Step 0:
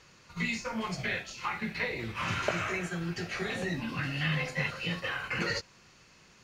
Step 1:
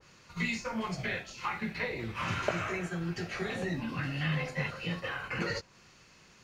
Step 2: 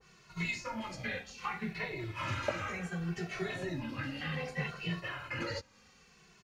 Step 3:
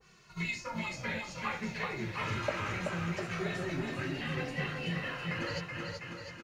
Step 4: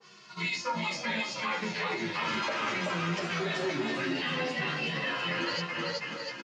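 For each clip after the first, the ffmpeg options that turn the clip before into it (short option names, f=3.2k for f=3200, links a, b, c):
-af "adynamicequalizer=threshold=0.00562:dfrequency=1500:dqfactor=0.7:tfrequency=1500:tqfactor=0.7:attack=5:release=100:ratio=0.375:range=2.5:mode=cutabove:tftype=highshelf"
-filter_complex "[0:a]asplit=2[a][b];[b]adelay=2.2,afreqshift=-0.65[c];[a][c]amix=inputs=2:normalize=1"
-af "aecho=1:1:380|703|977.6|1211|1409:0.631|0.398|0.251|0.158|0.1"
-filter_complex "[0:a]highpass=f=180:w=0.5412,highpass=f=180:w=1.3066,equalizer=f=980:t=q:w=4:g=4,equalizer=f=3.3k:t=q:w=4:g=6,equalizer=f=4.9k:t=q:w=4:g=6,lowpass=f=7.5k:w=0.5412,lowpass=f=7.5k:w=1.3066,alimiter=level_in=5dB:limit=-24dB:level=0:latency=1:release=19,volume=-5dB,asplit=2[a][b];[b]adelay=10.5,afreqshift=-0.82[c];[a][c]amix=inputs=2:normalize=1,volume=9dB"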